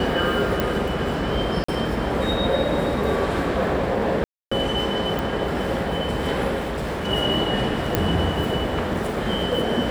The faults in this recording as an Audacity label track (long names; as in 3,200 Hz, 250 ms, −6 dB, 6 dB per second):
0.600000	0.600000	click
1.640000	1.680000	drop-out 44 ms
4.240000	4.510000	drop-out 275 ms
5.190000	5.190000	click
6.590000	7.080000	clipping −23.5 dBFS
7.950000	7.950000	click −5 dBFS